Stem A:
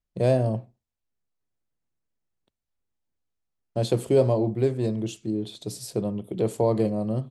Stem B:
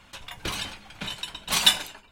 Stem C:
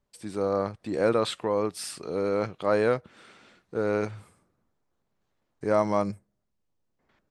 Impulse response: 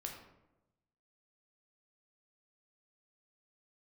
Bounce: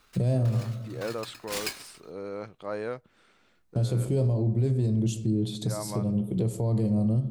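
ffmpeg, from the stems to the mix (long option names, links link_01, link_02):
-filter_complex "[0:a]bass=frequency=250:gain=15,treble=frequency=4000:gain=8,volume=-1.5dB,asplit=2[link_01][link_02];[link_02]volume=-6dB[link_03];[1:a]aeval=exprs='val(0)*sgn(sin(2*PI*1300*n/s))':channel_layout=same,volume=-10dB[link_04];[2:a]volume=-10dB,asplit=2[link_05][link_06];[link_06]apad=whole_len=322085[link_07];[link_01][link_07]sidechaincompress=threshold=-36dB:ratio=8:attack=16:release=1240[link_08];[3:a]atrim=start_sample=2205[link_09];[link_03][link_09]afir=irnorm=-1:irlink=0[link_10];[link_08][link_04][link_05][link_10]amix=inputs=4:normalize=0,alimiter=limit=-18dB:level=0:latency=1:release=278"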